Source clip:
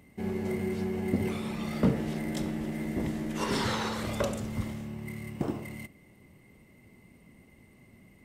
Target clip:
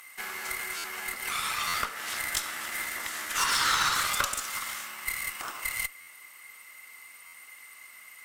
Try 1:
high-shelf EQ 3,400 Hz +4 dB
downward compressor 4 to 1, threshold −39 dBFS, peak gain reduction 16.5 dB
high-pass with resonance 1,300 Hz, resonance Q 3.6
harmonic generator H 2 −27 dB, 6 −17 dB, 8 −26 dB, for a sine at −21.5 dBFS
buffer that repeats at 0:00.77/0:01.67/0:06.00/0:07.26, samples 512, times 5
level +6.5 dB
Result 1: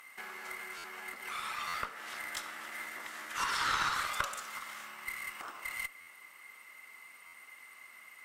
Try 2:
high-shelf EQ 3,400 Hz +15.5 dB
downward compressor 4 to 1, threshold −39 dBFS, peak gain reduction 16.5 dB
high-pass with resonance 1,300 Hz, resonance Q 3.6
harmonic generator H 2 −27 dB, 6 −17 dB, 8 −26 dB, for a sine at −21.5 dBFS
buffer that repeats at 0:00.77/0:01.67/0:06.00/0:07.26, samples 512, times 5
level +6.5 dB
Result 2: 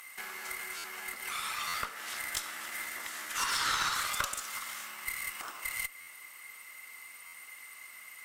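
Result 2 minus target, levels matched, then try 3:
downward compressor: peak gain reduction +5 dB
high-shelf EQ 3,400 Hz +15.5 dB
downward compressor 4 to 1, threshold −32 dBFS, peak gain reduction 11.5 dB
high-pass with resonance 1,300 Hz, resonance Q 3.6
harmonic generator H 2 −27 dB, 6 −17 dB, 8 −26 dB, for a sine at −21.5 dBFS
buffer that repeats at 0:00.77/0:01.67/0:06.00/0:07.26, samples 512, times 5
level +6.5 dB

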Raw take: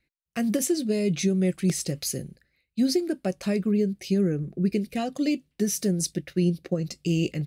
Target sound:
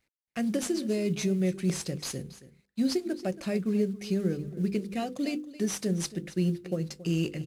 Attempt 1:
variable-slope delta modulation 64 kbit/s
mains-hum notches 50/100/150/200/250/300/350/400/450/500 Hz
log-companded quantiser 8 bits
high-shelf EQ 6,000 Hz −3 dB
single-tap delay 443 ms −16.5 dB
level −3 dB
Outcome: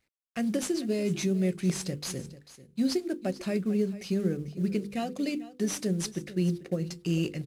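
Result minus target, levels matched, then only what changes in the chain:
echo 167 ms late
change: single-tap delay 276 ms −16.5 dB

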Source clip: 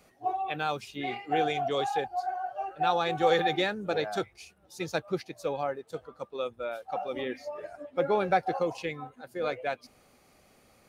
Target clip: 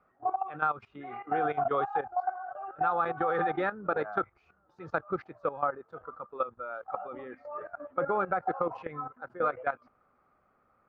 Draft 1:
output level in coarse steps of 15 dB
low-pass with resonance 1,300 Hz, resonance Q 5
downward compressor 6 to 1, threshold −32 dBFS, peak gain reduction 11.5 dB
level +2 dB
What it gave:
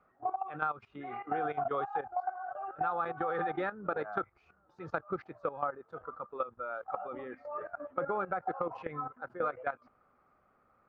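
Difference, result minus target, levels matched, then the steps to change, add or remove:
downward compressor: peak gain reduction +5 dB
change: downward compressor 6 to 1, threshold −26 dBFS, peak gain reduction 6.5 dB

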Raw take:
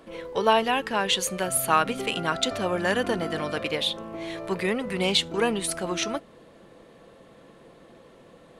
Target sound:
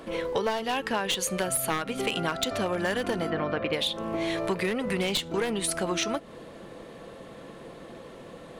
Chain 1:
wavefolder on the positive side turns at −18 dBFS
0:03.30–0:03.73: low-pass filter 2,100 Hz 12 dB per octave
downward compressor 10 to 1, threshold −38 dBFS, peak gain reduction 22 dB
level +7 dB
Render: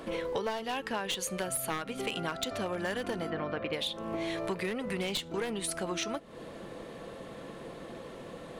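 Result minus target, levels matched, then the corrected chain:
downward compressor: peak gain reduction +6 dB
wavefolder on the positive side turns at −18 dBFS
0:03.30–0:03.73: low-pass filter 2,100 Hz 12 dB per octave
downward compressor 10 to 1, threshold −31.5 dBFS, peak gain reduction 16 dB
level +7 dB

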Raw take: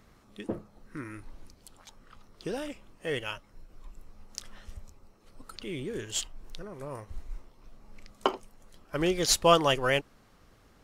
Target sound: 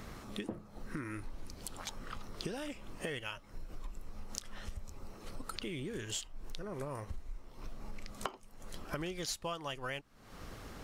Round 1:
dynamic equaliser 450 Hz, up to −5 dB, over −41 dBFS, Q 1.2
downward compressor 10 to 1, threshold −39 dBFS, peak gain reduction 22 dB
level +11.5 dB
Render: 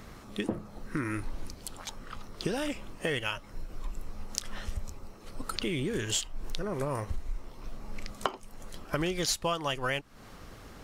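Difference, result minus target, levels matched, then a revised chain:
downward compressor: peak gain reduction −9 dB
dynamic equaliser 450 Hz, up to −5 dB, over −41 dBFS, Q 1.2
downward compressor 10 to 1, threshold −49 dBFS, peak gain reduction 31 dB
level +11.5 dB

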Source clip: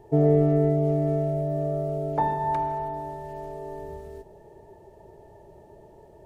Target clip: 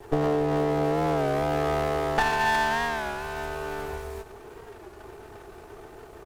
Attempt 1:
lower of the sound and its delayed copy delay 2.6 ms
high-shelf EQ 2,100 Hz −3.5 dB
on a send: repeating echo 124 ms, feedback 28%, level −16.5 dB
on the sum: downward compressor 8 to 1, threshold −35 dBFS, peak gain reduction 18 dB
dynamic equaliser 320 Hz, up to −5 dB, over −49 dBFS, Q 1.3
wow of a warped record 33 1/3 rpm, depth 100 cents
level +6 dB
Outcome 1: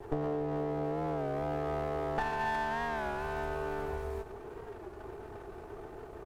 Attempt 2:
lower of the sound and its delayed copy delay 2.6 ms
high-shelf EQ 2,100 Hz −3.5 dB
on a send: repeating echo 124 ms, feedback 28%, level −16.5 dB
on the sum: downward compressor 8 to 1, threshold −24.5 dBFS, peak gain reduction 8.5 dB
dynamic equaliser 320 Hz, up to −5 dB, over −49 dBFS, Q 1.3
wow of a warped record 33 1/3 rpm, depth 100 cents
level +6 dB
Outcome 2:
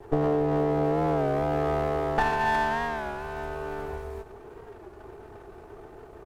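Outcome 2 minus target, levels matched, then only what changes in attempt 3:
4,000 Hz band −6.5 dB
change: high-shelf EQ 2,100 Hz +7.5 dB

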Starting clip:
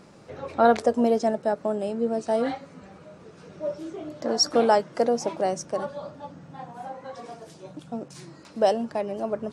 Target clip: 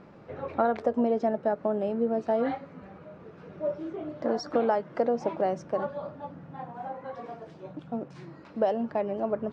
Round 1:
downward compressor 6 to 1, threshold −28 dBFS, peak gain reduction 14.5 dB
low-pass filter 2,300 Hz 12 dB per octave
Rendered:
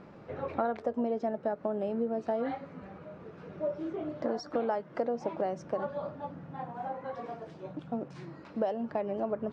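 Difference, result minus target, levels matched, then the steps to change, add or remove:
downward compressor: peak gain reduction +6 dB
change: downward compressor 6 to 1, threshold −21 dBFS, peak gain reduction 8.5 dB

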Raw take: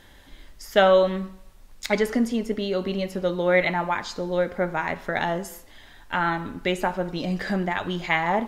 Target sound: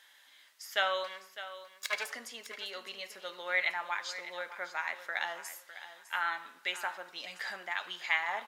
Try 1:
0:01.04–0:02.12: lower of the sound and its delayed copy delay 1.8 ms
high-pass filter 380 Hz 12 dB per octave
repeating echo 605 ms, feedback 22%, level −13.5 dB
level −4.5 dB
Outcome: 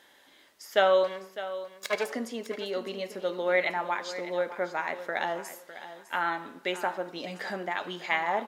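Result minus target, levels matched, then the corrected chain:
500 Hz band +8.5 dB
0:01.04–0:02.12: lower of the sound and its delayed copy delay 1.8 ms
high-pass filter 1,300 Hz 12 dB per octave
repeating echo 605 ms, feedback 22%, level −13.5 dB
level −4.5 dB

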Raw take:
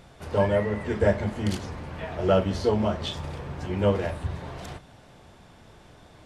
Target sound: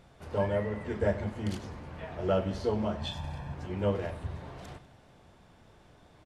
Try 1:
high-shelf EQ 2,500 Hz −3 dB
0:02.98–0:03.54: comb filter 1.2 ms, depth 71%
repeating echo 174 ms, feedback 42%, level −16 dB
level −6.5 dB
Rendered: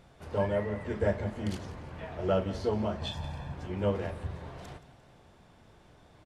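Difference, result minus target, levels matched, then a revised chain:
echo 76 ms late
high-shelf EQ 2,500 Hz −3 dB
0:02.98–0:03.54: comb filter 1.2 ms, depth 71%
repeating echo 98 ms, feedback 42%, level −16 dB
level −6.5 dB

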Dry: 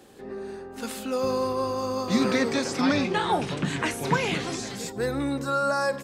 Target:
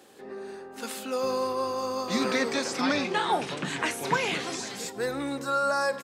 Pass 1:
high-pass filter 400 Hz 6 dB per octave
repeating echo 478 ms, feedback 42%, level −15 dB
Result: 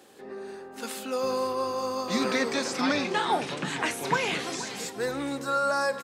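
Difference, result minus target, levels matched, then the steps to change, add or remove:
echo-to-direct +8 dB
change: repeating echo 478 ms, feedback 42%, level −23 dB

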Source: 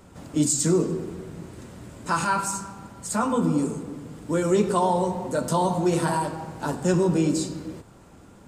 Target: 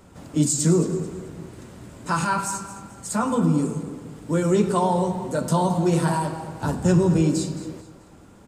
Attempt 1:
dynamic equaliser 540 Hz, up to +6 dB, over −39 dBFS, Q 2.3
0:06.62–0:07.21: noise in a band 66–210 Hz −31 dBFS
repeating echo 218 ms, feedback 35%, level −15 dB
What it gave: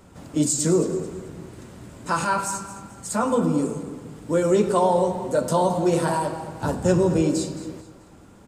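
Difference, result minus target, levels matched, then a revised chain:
125 Hz band −4.5 dB
dynamic equaliser 160 Hz, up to +6 dB, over −39 dBFS, Q 2.3
0:06.62–0:07.21: noise in a band 66–210 Hz −31 dBFS
repeating echo 218 ms, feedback 35%, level −15 dB

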